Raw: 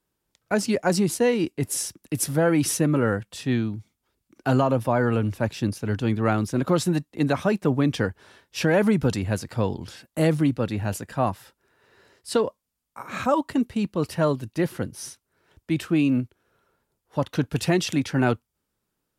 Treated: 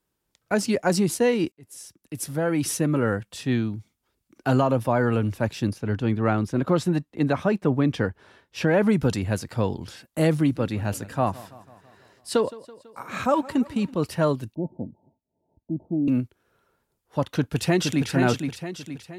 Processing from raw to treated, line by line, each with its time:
1.52–3.68 s: fade in equal-power
5.73–8.89 s: treble shelf 4.5 kHz -10 dB
10.33–13.94 s: modulated delay 165 ms, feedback 60%, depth 62 cents, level -19.5 dB
14.55–16.08 s: rippled Chebyshev low-pass 920 Hz, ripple 9 dB
17.27–18.08 s: echo throw 470 ms, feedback 45%, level -5.5 dB

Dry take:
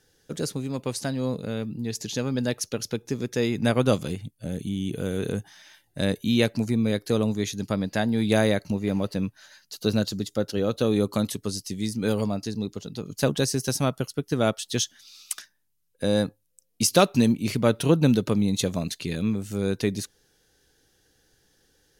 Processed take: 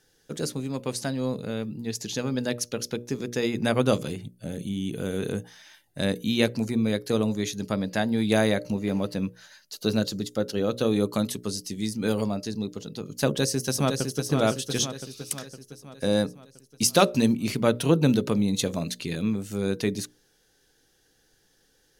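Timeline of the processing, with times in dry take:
13.27–14.24 s: echo throw 510 ms, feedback 55%, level -5.5 dB
whole clip: peaking EQ 73 Hz -6.5 dB 0.92 oct; hum notches 60/120/180/240/300/360/420/480/540/600 Hz

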